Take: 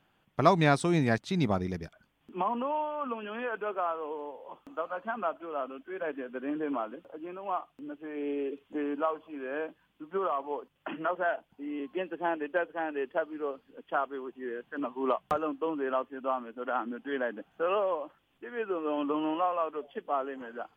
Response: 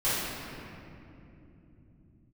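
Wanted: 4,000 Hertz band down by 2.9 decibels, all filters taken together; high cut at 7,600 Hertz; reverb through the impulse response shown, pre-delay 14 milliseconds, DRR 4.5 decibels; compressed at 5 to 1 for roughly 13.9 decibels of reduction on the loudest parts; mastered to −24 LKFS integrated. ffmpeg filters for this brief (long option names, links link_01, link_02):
-filter_complex "[0:a]lowpass=7600,equalizer=frequency=4000:width_type=o:gain=-3.5,acompressor=threshold=-33dB:ratio=5,asplit=2[link_01][link_02];[1:a]atrim=start_sample=2205,adelay=14[link_03];[link_02][link_03]afir=irnorm=-1:irlink=0,volume=-17dB[link_04];[link_01][link_04]amix=inputs=2:normalize=0,volume=12.5dB"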